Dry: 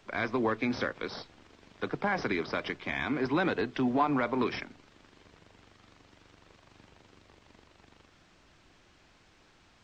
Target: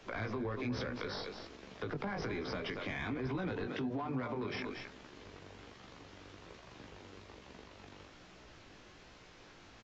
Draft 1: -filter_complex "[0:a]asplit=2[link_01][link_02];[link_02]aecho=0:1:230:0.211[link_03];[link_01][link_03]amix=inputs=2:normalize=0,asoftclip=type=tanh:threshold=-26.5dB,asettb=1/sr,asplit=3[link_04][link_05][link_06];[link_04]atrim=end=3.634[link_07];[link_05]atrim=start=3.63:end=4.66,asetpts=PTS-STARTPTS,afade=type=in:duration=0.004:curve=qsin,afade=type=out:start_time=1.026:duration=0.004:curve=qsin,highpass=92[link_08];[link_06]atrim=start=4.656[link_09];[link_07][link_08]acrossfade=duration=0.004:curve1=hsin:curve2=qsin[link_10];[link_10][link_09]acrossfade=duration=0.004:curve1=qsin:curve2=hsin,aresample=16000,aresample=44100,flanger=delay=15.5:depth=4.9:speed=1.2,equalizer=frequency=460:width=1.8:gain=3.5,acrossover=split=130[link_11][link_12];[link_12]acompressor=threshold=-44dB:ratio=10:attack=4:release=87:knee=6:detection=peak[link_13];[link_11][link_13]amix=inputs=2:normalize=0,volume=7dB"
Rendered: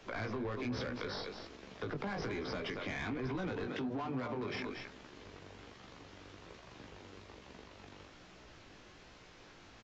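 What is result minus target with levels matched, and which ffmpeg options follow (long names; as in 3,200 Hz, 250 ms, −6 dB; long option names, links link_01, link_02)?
soft clipping: distortion +10 dB
-filter_complex "[0:a]asplit=2[link_01][link_02];[link_02]aecho=0:1:230:0.211[link_03];[link_01][link_03]amix=inputs=2:normalize=0,asoftclip=type=tanh:threshold=-18.5dB,asettb=1/sr,asplit=3[link_04][link_05][link_06];[link_04]atrim=end=3.634[link_07];[link_05]atrim=start=3.63:end=4.66,asetpts=PTS-STARTPTS,afade=type=in:duration=0.004:curve=qsin,afade=type=out:start_time=1.026:duration=0.004:curve=qsin,highpass=92[link_08];[link_06]atrim=start=4.656[link_09];[link_07][link_08]acrossfade=duration=0.004:curve1=hsin:curve2=qsin[link_10];[link_10][link_09]acrossfade=duration=0.004:curve1=qsin:curve2=hsin,aresample=16000,aresample=44100,flanger=delay=15.5:depth=4.9:speed=1.2,equalizer=frequency=460:width=1.8:gain=3.5,acrossover=split=130[link_11][link_12];[link_12]acompressor=threshold=-44dB:ratio=10:attack=4:release=87:knee=6:detection=peak[link_13];[link_11][link_13]amix=inputs=2:normalize=0,volume=7dB"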